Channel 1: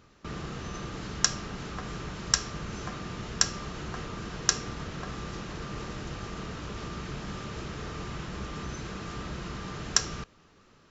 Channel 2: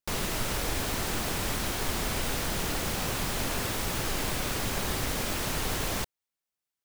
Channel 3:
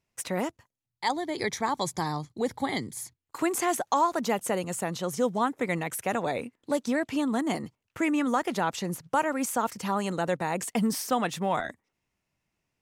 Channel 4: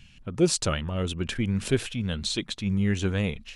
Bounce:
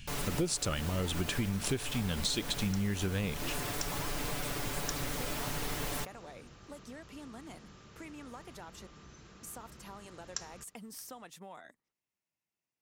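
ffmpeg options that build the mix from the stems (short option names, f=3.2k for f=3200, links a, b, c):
-filter_complex "[0:a]adelay=400,volume=-17.5dB,asplit=2[a][b];[b]volume=-18.5dB[c];[1:a]highshelf=f=4.4k:g=-7.5,aecho=1:1:6.9:0.78,volume=-7dB[d];[2:a]highpass=f=200:p=1,acompressor=threshold=-34dB:ratio=3,volume=-13.5dB,asplit=3[e][f][g];[e]atrim=end=8.87,asetpts=PTS-STARTPTS,afade=t=out:st=8.866:d=0.004:c=hsin[h];[f]atrim=start=8.87:end=9.43,asetpts=PTS-STARTPTS,volume=0[i];[g]atrim=start=9.43,asetpts=PTS-STARTPTS,afade=t=in:d=0.004:c=hsin[j];[h][i][j]concat=n=3:v=0:a=1[k];[3:a]volume=1.5dB[l];[c]aecho=0:1:623:1[m];[a][d][k][l][m]amix=inputs=5:normalize=0,highshelf=f=6.4k:g=7.5,acompressor=threshold=-29dB:ratio=8"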